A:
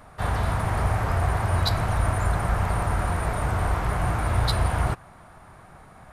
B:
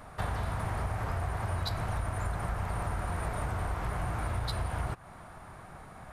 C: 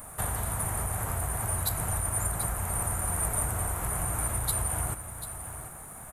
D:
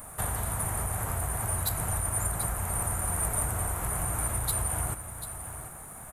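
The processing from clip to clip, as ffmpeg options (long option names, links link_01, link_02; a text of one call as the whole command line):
ffmpeg -i in.wav -af "acompressor=threshold=-30dB:ratio=6" out.wav
ffmpeg -i in.wav -af "aexciter=amount=14.3:drive=4.9:freq=7400,aecho=1:1:741:0.282" out.wav
ffmpeg -i in.wav -af "asoftclip=type=hard:threshold=-19.5dB" out.wav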